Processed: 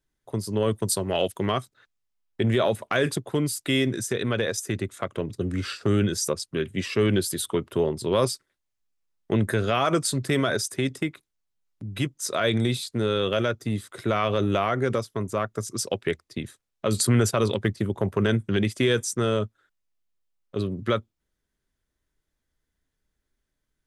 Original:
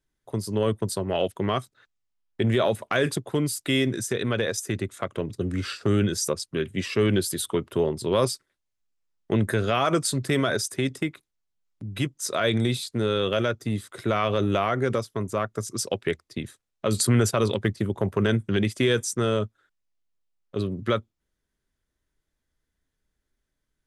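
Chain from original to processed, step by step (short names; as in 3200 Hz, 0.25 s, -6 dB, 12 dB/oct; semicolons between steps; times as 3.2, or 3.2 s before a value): 0.71–1.52 high shelf 3900 Hz +9.5 dB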